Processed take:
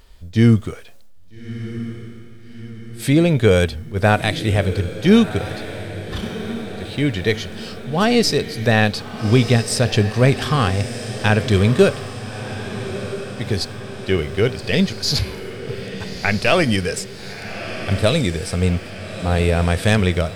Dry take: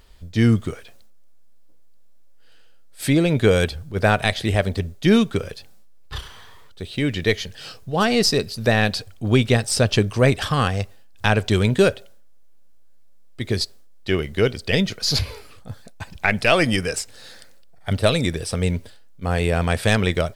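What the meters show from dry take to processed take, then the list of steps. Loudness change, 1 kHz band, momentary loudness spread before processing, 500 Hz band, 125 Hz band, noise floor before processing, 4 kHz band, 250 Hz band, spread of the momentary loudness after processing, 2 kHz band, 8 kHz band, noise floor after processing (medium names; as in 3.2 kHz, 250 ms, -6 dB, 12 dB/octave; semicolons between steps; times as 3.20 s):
+1.5 dB, +1.5 dB, 17 LU, +2.0 dB, +3.5 dB, -43 dBFS, +1.0 dB, +3.0 dB, 15 LU, +1.0 dB, +0.5 dB, -37 dBFS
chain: echo that smears into a reverb 1281 ms, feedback 59%, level -12.5 dB; harmonic-percussive split harmonic +5 dB; trim -1 dB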